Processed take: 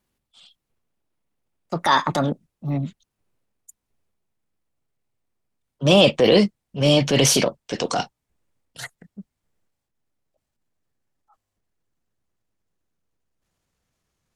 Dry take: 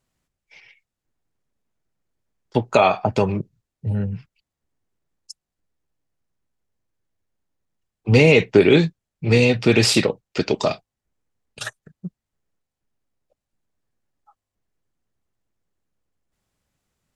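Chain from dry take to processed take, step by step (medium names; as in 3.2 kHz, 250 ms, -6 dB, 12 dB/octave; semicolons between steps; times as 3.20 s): gliding tape speed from 152% -> 87%; transient shaper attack -7 dB, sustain +4 dB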